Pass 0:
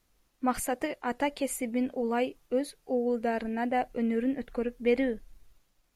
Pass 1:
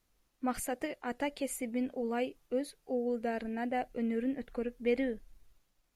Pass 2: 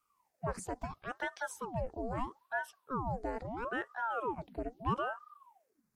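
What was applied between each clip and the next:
dynamic bell 1 kHz, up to -5 dB, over -45 dBFS, Q 2.5; trim -4.5 dB
touch-sensitive phaser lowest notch 510 Hz, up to 3.3 kHz, full sweep at -31 dBFS; ring modulator with a swept carrier 700 Hz, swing 75%, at 0.76 Hz

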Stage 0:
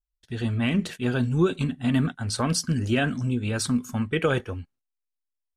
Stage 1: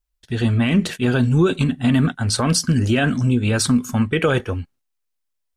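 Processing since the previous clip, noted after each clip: peak limiter -16.5 dBFS, peak gain reduction 4.5 dB; trim +8.5 dB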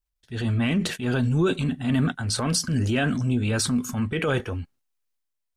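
transient shaper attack -7 dB, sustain +4 dB; trim -5 dB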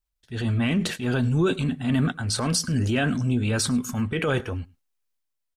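delay 104 ms -24 dB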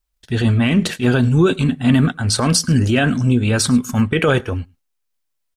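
transient shaper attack +8 dB, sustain -4 dB; trim +7 dB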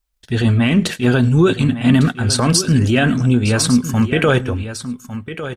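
delay 1153 ms -12 dB; trim +1 dB

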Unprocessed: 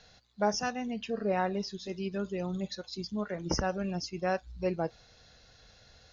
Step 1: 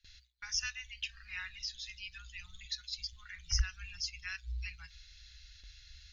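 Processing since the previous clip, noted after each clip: inverse Chebyshev band-stop 240–590 Hz, stop band 80 dB; treble shelf 2.7 kHz -9.5 dB; gate with hold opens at -55 dBFS; trim +9.5 dB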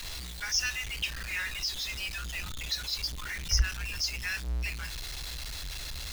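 jump at every zero crossing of -38.5 dBFS; trim +4.5 dB

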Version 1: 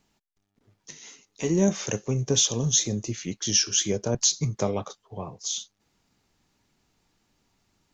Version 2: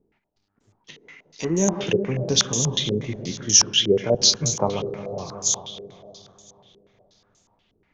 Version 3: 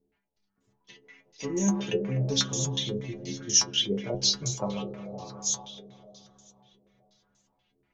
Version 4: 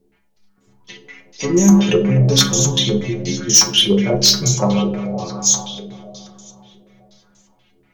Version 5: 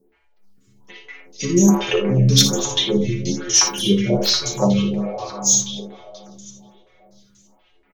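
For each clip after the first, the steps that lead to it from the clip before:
backward echo that repeats 102 ms, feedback 81%, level -13 dB; two-band feedback delay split 790 Hz, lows 363 ms, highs 114 ms, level -13 dB; step-sequenced low-pass 8.3 Hz 420–7100 Hz
inharmonic resonator 64 Hz, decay 0.38 s, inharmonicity 0.008; trim +1.5 dB
sine folder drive 7 dB, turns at -8.5 dBFS; reverberation RT60 0.50 s, pre-delay 5 ms, DRR 6.5 dB; trim +2.5 dB
on a send: early reflections 58 ms -8.5 dB, 79 ms -11.5 dB; on the sum: lamp-driven phase shifter 1.2 Hz; trim +1 dB

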